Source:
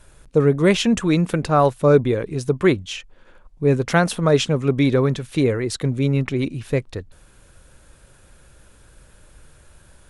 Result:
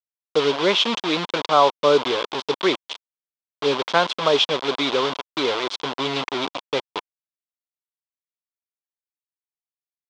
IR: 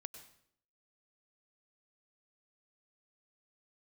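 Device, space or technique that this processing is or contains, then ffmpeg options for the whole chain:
hand-held game console: -filter_complex "[0:a]asettb=1/sr,asplit=3[link_01][link_02][link_03];[link_01]atrim=end=4.634[link_04];[link_02]atrim=start=4.63:end=6,asetpts=PTS-STARTPTS,afade=type=in:duration=0.004:curve=qsin,afade=type=out:start_time=1.366:duration=0.004:curve=qsin,lowshelf=frequency=260:gain=-3[link_05];[link_03]atrim=start=5.996[link_06];[link_04][link_05]acrossfade=duration=0.004:curve1=hsin:curve2=qsin[link_07];[link_07][link_06]acrossfade=duration=0.004:curve1=qsin:curve2=hsin,acrusher=bits=3:mix=0:aa=0.000001,highpass=420,equalizer=frequency=1000:width_type=q:width=4:gain=7,equalizer=frequency=1800:width_type=q:width=4:gain=-6,equalizer=frequency=3400:width_type=q:width=4:gain=9,lowpass=frequency=5100:width=0.5412,lowpass=frequency=5100:width=1.3066"

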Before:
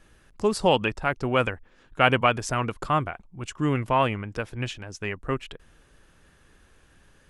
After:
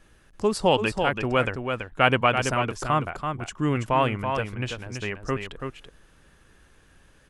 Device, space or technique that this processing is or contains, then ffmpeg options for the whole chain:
ducked delay: -filter_complex "[0:a]asplit=3[link_01][link_02][link_03];[link_02]adelay=332,volume=-6dB[link_04];[link_03]apad=whole_len=336555[link_05];[link_04][link_05]sidechaincompress=threshold=-24dB:ratio=8:attack=43:release=125[link_06];[link_01][link_06]amix=inputs=2:normalize=0"

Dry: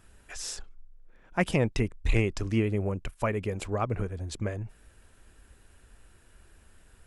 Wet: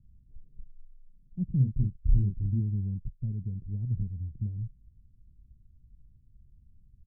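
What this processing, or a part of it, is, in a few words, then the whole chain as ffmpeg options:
the neighbour's flat through the wall: -filter_complex "[0:a]lowpass=frequency=190:width=0.5412,lowpass=frequency=190:width=1.3066,equalizer=frequency=130:width_type=o:width=0.44:gain=5,asplit=3[link_01][link_02][link_03];[link_01]afade=type=out:start_time=1.59:duration=0.02[link_04];[link_02]asplit=2[link_05][link_06];[link_06]adelay=30,volume=-3.5dB[link_07];[link_05][link_07]amix=inputs=2:normalize=0,afade=type=in:start_time=1.59:duration=0.02,afade=type=out:start_time=2.59:duration=0.02[link_08];[link_03]afade=type=in:start_time=2.59:duration=0.02[link_09];[link_04][link_08][link_09]amix=inputs=3:normalize=0"

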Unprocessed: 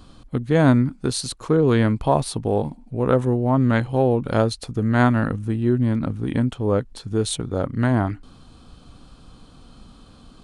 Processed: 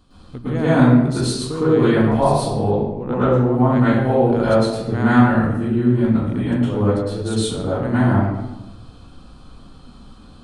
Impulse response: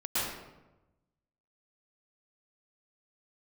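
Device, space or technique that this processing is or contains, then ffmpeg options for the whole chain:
bathroom: -filter_complex "[1:a]atrim=start_sample=2205[link_01];[0:a][link_01]afir=irnorm=-1:irlink=0,asettb=1/sr,asplit=3[link_02][link_03][link_04];[link_02]atrim=end=2.714[link_05];[link_03]atrim=start=2.71:end=3.54,asetpts=PTS-STARTPTS,afade=type=in:duration=0.004:curve=qsin,afade=type=out:start_time=0.826:duration=0.004:curve=qsin,lowpass=frequency=6400:width=0.5412,lowpass=frequency=6400:width=1.3066[link_06];[link_04]atrim=start=3.536[link_07];[link_05][link_06]acrossfade=duration=0.004:curve1=hsin:curve2=qsin[link_08];[link_08][link_07]acrossfade=duration=0.004:curve1=qsin:curve2=hsin,volume=-5.5dB"

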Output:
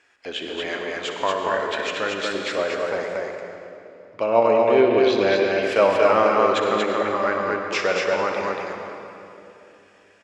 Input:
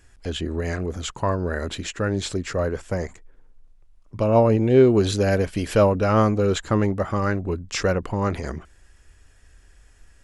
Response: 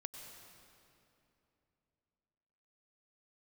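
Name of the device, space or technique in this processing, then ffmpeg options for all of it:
station announcement: -filter_complex "[0:a]highpass=480,lowpass=4300,equalizer=frequency=2400:width_type=o:width=0.36:gain=5.5,aecho=1:1:61.22|233.2:0.282|0.708[link_01];[1:a]atrim=start_sample=2205[link_02];[link_01][link_02]afir=irnorm=-1:irlink=0,asettb=1/sr,asplit=3[link_03][link_04][link_05];[link_03]atrim=end=4.814[link_06];[link_04]atrim=start=4.81:end=5.63,asetpts=PTS-STARTPTS,afade=type=in:duration=0.004:curve=qsin,afade=type=out:start_time=0.816:duration=0.004:curve=qsin,lowpass=frequency=5600:width=0.5412,lowpass=frequency=5600:width=1.3066[link_07];[link_05]atrim=start=5.626[link_08];[link_06][link_07]acrossfade=duration=0.004:curve1=hsin:curve2=qsin[link_09];[link_09][link_08]acrossfade=duration=0.004:curve1=qsin:curve2=hsin,volume=6.5dB"

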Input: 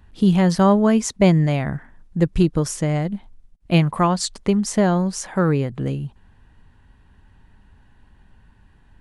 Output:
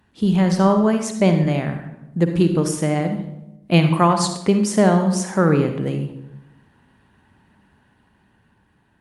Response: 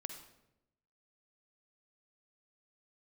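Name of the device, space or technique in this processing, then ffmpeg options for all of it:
far-field microphone of a smart speaker: -filter_complex "[1:a]atrim=start_sample=2205[link_01];[0:a][link_01]afir=irnorm=-1:irlink=0,highpass=140,dynaudnorm=framelen=600:gausssize=7:maxgain=6dB,volume=1.5dB" -ar 48000 -c:a libopus -b:a 48k

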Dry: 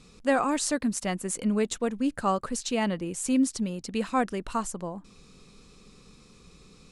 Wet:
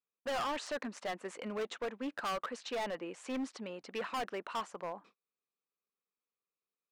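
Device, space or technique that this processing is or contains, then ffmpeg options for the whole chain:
walkie-talkie: -af "highpass=580,lowpass=2300,asoftclip=type=hard:threshold=-34dB,agate=range=-38dB:threshold=-57dB:ratio=16:detection=peak,volume=1dB"

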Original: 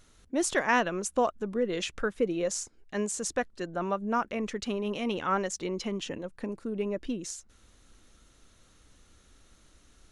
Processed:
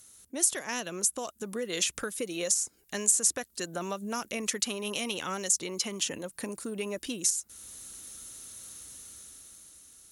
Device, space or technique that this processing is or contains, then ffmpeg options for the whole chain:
FM broadcast chain: -filter_complex "[0:a]highpass=72,dynaudnorm=framelen=200:gausssize=11:maxgain=9dB,acrossover=split=640|2700[link_01][link_02][link_03];[link_01]acompressor=threshold=-30dB:ratio=4[link_04];[link_02]acompressor=threshold=-34dB:ratio=4[link_05];[link_03]acompressor=threshold=-32dB:ratio=4[link_06];[link_04][link_05][link_06]amix=inputs=3:normalize=0,aemphasis=mode=production:type=50fm,alimiter=limit=-15.5dB:level=0:latency=1:release=448,asoftclip=type=hard:threshold=-16.5dB,lowpass=frequency=15000:width=0.5412,lowpass=frequency=15000:width=1.3066,aemphasis=mode=production:type=50fm,volume=-5dB"

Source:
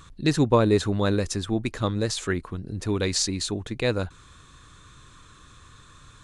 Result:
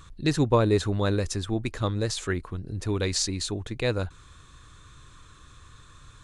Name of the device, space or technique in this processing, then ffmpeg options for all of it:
low shelf boost with a cut just above: -af "lowshelf=frequency=110:gain=5,equalizer=frequency=210:width_type=o:width=0.75:gain=-3.5,volume=-2dB"

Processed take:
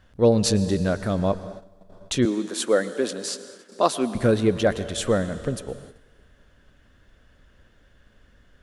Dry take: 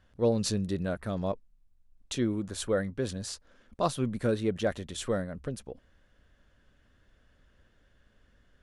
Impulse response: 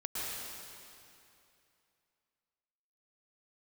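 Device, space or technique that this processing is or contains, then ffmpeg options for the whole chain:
keyed gated reverb: -filter_complex "[0:a]asplit=3[link_01][link_02][link_03];[1:a]atrim=start_sample=2205[link_04];[link_02][link_04]afir=irnorm=-1:irlink=0[link_05];[link_03]apad=whole_len=380212[link_06];[link_05][link_06]sidechaingate=range=-14dB:threshold=-58dB:ratio=16:detection=peak,volume=-15.5dB[link_07];[link_01][link_07]amix=inputs=2:normalize=0,asettb=1/sr,asplit=3[link_08][link_09][link_10];[link_08]atrim=end=2.254[link_11];[link_09]atrim=start=2.25:end=4.15,asetpts=PTS-STARTPTS,afade=type=in:duration=0.004:curve=qsin,afade=type=out:start_time=1.896:duration=0.004:curve=qsin,highpass=frequency=240:width=0.5412,highpass=frequency=240:width=1.3066[link_12];[link_10]atrim=start=4.146[link_13];[link_11][link_12]acrossfade=duration=0.004:curve1=hsin:curve2=qsin[link_14];[link_14][link_13]acrossfade=duration=0.004:curve1=qsin:curve2=hsin,volume=7.5dB"

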